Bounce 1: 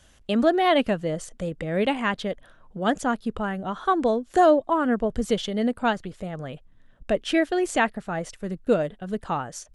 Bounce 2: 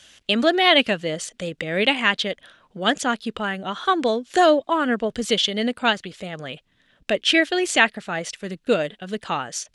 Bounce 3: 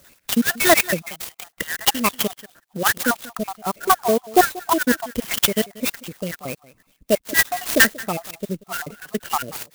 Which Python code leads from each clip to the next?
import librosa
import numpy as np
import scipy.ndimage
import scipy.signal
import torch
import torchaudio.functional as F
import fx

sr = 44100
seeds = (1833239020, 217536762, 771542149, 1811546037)

y1 = fx.weighting(x, sr, curve='D')
y1 = y1 * librosa.db_to_amplitude(1.5)
y2 = fx.spec_dropout(y1, sr, seeds[0], share_pct=67)
y2 = y2 + 10.0 ** (-20.0 / 20.0) * np.pad(y2, (int(185 * sr / 1000.0), 0))[:len(y2)]
y2 = fx.clock_jitter(y2, sr, seeds[1], jitter_ms=0.062)
y2 = y2 * librosa.db_to_amplitude(6.0)